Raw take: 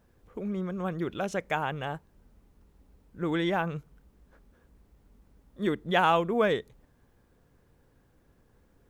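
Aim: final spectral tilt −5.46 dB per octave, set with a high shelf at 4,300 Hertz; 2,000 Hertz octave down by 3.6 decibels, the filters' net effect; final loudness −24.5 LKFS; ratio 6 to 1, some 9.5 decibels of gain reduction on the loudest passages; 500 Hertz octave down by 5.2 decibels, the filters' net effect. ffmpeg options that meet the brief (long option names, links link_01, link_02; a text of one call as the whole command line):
ffmpeg -i in.wav -af "equalizer=frequency=500:width_type=o:gain=-6.5,equalizer=frequency=2000:width_type=o:gain=-3,highshelf=frequency=4300:gain=-8,acompressor=threshold=-32dB:ratio=6,volume=13.5dB" out.wav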